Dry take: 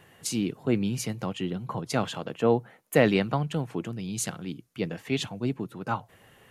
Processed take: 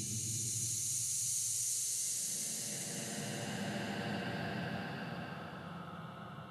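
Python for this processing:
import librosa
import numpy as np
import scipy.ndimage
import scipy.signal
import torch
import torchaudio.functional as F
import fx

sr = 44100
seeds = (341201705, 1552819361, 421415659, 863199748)

y = fx.vibrato(x, sr, rate_hz=6.6, depth_cents=14.0)
y = fx.paulstretch(y, sr, seeds[0], factor=39.0, window_s=0.1, from_s=4.18)
y = F.gain(torch.from_numpy(y), -7.5).numpy()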